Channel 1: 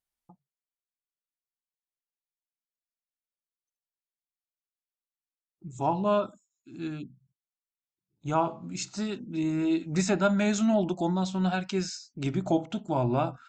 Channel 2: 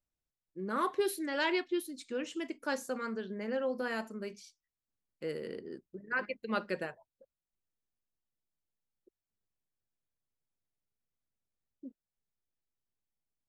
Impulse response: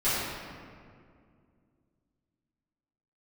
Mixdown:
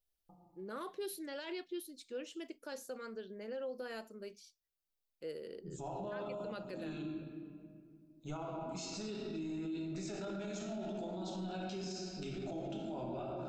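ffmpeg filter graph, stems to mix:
-filter_complex "[0:a]acompressor=threshold=-36dB:ratio=2,volume=-1.5dB,asplit=2[a][b];[b]volume=-7.5dB[c];[1:a]volume=-1dB[d];[2:a]atrim=start_sample=2205[e];[c][e]afir=irnorm=-1:irlink=0[f];[a][d][f]amix=inputs=3:normalize=0,equalizer=f=125:t=o:w=1:g=-12,equalizer=f=250:t=o:w=1:g=-7,equalizer=f=1k:t=o:w=1:g=-9,equalizer=f=2k:t=o:w=1:g=-8,equalizer=f=8k:t=o:w=1:g=-6,alimiter=level_in=10.5dB:limit=-24dB:level=0:latency=1:release=31,volume=-10.5dB"

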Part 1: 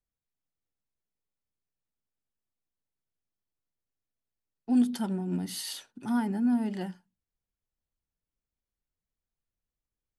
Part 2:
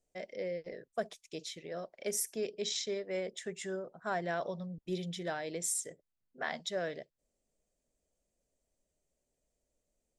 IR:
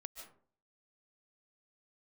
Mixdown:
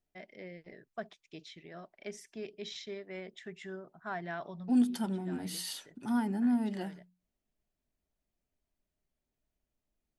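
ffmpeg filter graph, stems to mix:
-filter_complex "[0:a]bandreject=f=60:t=h:w=6,bandreject=f=120:t=h:w=6,bandreject=f=180:t=h:w=6,volume=-2.5dB,asplit=2[a][b];[1:a]lowpass=3.2k,equalizer=f=510:t=o:w=0.41:g=-14.5,volume=-1.5dB[c];[b]apad=whole_len=449251[d];[c][d]sidechaincompress=threshold=-42dB:ratio=8:attack=7.7:release=537[e];[a][e]amix=inputs=2:normalize=0"

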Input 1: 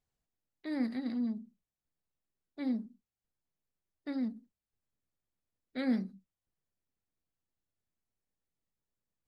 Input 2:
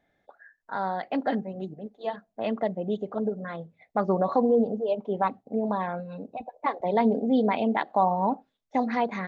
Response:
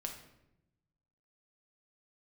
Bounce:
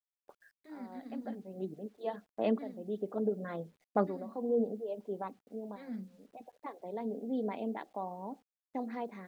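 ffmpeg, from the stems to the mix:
-filter_complex "[0:a]flanger=delay=1:depth=9.8:regen=-19:speed=1.2:shape=triangular,highshelf=f=4.1k:g=-11.5,volume=-5.5dB,asplit=2[a][b];[1:a]agate=range=-15dB:threshold=-51dB:ratio=16:detection=peak,highpass=91,equalizer=f=360:t=o:w=1.4:g=9,volume=-6.5dB,afade=t=out:st=4.45:d=0.35:silence=0.298538[c];[b]apad=whole_len=409076[d];[c][d]sidechaincompress=threshold=-58dB:ratio=8:attack=16:release=270[e];[a][e]amix=inputs=2:normalize=0,tremolo=f=0.79:d=0.41,equalizer=f=200:t=o:w=0.3:g=2.5,acrusher=bits=11:mix=0:aa=0.000001"

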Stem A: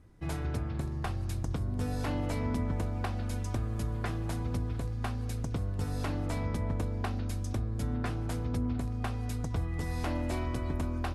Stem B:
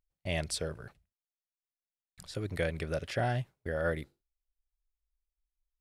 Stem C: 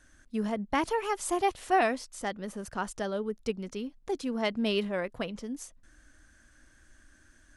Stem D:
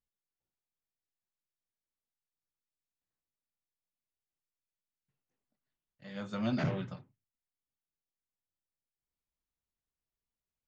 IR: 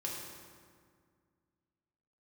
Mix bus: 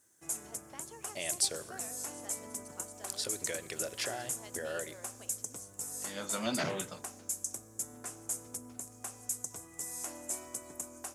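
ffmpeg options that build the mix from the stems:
-filter_complex "[0:a]highshelf=f=5.5k:t=q:w=3:g=10,volume=-11.5dB,asplit=2[a][b];[b]volume=-15dB[c];[1:a]acompressor=threshold=-37dB:ratio=6,adelay=900,volume=1.5dB,asplit=2[d][e];[e]volume=-17.5dB[f];[2:a]acompressor=threshold=-31dB:ratio=3,volume=-17.5dB[g];[3:a]volume=3dB[h];[4:a]atrim=start_sample=2205[i];[c][f]amix=inputs=2:normalize=0[j];[j][i]afir=irnorm=-1:irlink=0[k];[a][d][g][h][k]amix=inputs=5:normalize=0,highpass=120,bass=f=250:g=-13,treble=f=4k:g=12"

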